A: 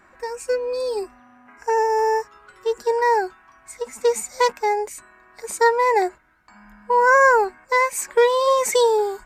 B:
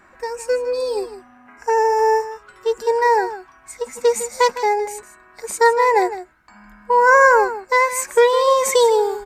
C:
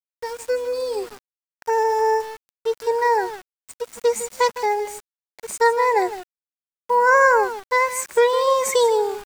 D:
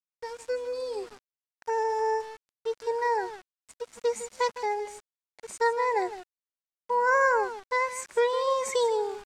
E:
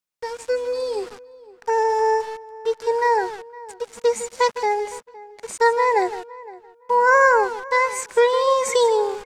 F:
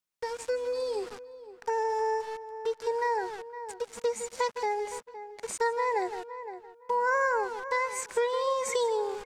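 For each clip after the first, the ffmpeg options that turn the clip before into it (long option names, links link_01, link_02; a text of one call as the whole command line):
ffmpeg -i in.wav -af "aecho=1:1:157:0.224,volume=2.5dB" out.wav
ffmpeg -i in.wav -af "aeval=exprs='val(0)*gte(abs(val(0)),0.0237)':channel_layout=same,volume=-3dB" out.wav
ffmpeg -i in.wav -af "lowpass=8200,volume=-8dB" out.wav
ffmpeg -i in.wav -filter_complex "[0:a]asplit=2[link_01][link_02];[link_02]adelay=513,lowpass=frequency=1900:poles=1,volume=-19dB,asplit=2[link_03][link_04];[link_04]adelay=513,lowpass=frequency=1900:poles=1,volume=0.22[link_05];[link_01][link_03][link_05]amix=inputs=3:normalize=0,volume=8dB" out.wav
ffmpeg -i in.wav -af "acompressor=threshold=-30dB:ratio=2,volume=-2dB" out.wav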